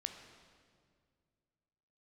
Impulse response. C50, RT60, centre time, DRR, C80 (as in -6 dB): 7.0 dB, 2.1 s, 32 ms, 5.5 dB, 8.0 dB